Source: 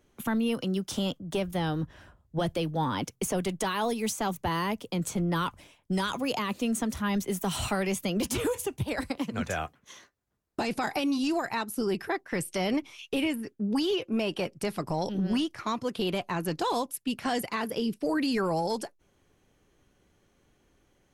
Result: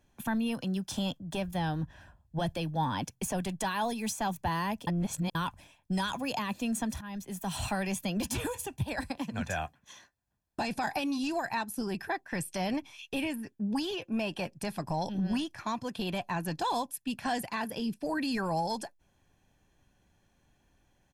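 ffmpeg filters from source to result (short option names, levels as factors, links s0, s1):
-filter_complex "[0:a]asplit=4[s0][s1][s2][s3];[s0]atrim=end=4.872[s4];[s1]atrim=start=4.868:end=5.352,asetpts=PTS-STARTPTS,areverse[s5];[s2]atrim=start=5.348:end=7.01,asetpts=PTS-STARTPTS,afade=t=out:st=1.658:d=0.004:c=hsin:silence=0.188365[s6];[s3]atrim=start=7.01,asetpts=PTS-STARTPTS,afade=t=in:d=0.97:c=qsin:silence=0.188365[s7];[s4][s5]acrossfade=d=0.004:c1=hsin:c2=hsin[s8];[s6][s7]concat=n=2:v=0:a=1[s9];[s8][s9]acrossfade=d=0.004:c1=hsin:c2=hsin,aecho=1:1:1.2:0.51,volume=0.668"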